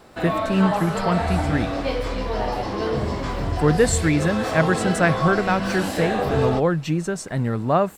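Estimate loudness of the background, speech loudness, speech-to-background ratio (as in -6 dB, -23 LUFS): -25.0 LUFS, -22.5 LUFS, 2.5 dB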